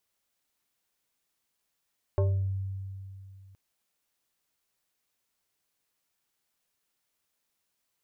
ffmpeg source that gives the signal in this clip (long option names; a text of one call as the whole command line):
ffmpeg -f lavfi -i "aevalsrc='0.0944*pow(10,-3*t/2.68)*sin(2*PI*96.5*t+0.98*pow(10,-3*t/0.5)*sin(2*PI*5.08*96.5*t))':duration=1.37:sample_rate=44100" out.wav